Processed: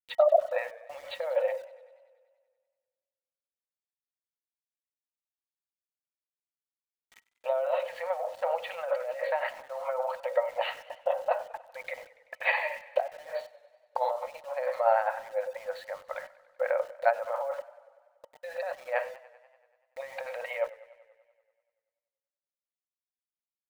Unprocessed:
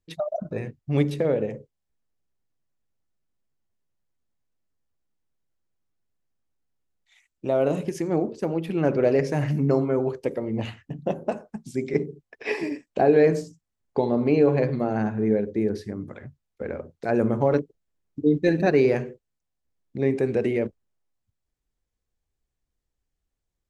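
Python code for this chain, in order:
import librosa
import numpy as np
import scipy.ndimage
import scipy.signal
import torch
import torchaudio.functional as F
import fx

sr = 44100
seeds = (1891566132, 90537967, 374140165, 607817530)

y = fx.high_shelf(x, sr, hz=2500.0, db=-10.0)
y = fx.over_compress(y, sr, threshold_db=-26.0, ratio=-0.5)
y = fx.brickwall_bandpass(y, sr, low_hz=500.0, high_hz=4600.0)
y = np.where(np.abs(y) >= 10.0 ** (-54.5 / 20.0), y, 0.0)
y = fx.small_body(y, sr, hz=(910.0, 1300.0, 1900.0, 3000.0), ring_ms=95, db=9)
y = fx.echo_warbled(y, sr, ms=96, feedback_pct=68, rate_hz=2.8, cents=91, wet_db=-19.5)
y = y * librosa.db_to_amplitude(5.0)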